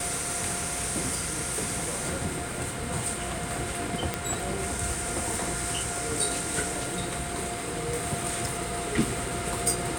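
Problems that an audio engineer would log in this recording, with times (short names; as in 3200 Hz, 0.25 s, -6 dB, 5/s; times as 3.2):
4.14 pop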